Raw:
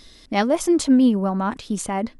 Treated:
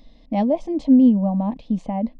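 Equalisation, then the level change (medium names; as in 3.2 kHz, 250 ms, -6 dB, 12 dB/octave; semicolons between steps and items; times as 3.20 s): dynamic bell 1.3 kHz, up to -5 dB, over -33 dBFS, Q 0.89; tape spacing loss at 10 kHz 44 dB; static phaser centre 380 Hz, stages 6; +4.5 dB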